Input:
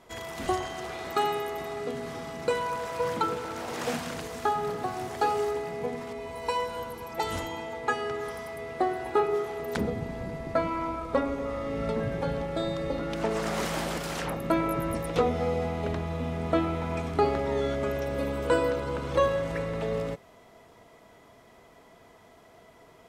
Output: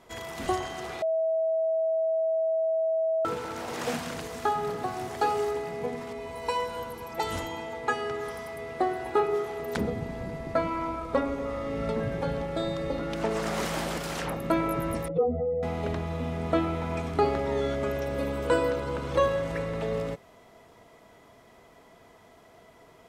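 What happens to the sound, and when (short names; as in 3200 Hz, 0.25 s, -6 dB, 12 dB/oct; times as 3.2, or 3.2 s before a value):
1.02–3.25 bleep 647 Hz -23 dBFS
15.08–15.63 spectral contrast raised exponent 2.4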